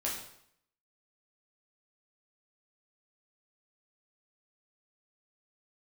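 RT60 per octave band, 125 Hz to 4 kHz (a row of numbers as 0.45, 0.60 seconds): 0.70, 0.70, 0.70, 0.70, 0.65, 0.65 seconds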